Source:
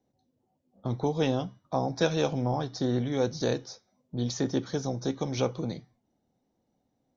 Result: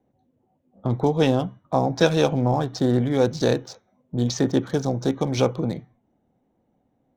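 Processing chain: Wiener smoothing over 9 samples; gain +7.5 dB

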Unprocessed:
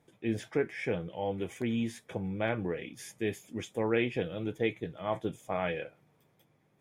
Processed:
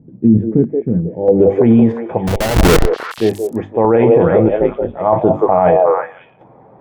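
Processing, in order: notches 50/100/150/200/250/300/350 Hz; 4.48–4.97 ring modulator 70 Hz; low-pass sweep 220 Hz -> 890 Hz, 0.99–1.62; 2.27–3.18 Schmitt trigger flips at -34 dBFS; chopper 0.78 Hz, depth 60%, duty 50%; on a send: delay with a stepping band-pass 0.176 s, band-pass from 530 Hz, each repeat 1.4 oct, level -3.5 dB; on the sum: maximiser +26 dB; gain -1 dB

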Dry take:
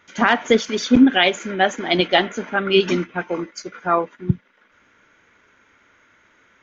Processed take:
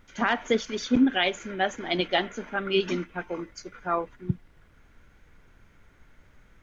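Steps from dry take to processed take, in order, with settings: added noise brown -46 dBFS; gain -8.5 dB

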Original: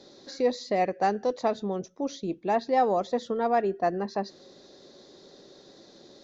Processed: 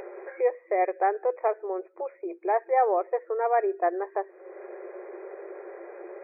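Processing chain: upward compressor, threshold -27 dBFS; FFT band-pass 340–2500 Hz; gain +1 dB

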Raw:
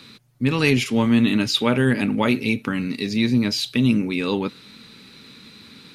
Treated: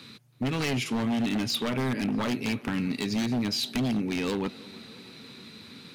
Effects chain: HPF 79 Hz 12 dB/oct; low shelf 140 Hz +4 dB; compressor 2.5:1, threshold -22 dBFS, peak gain reduction 7.5 dB; wavefolder -19 dBFS; on a send: tape echo 0.323 s, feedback 81%, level -19 dB, low-pass 3400 Hz; on the sum: gain -2.5 dB

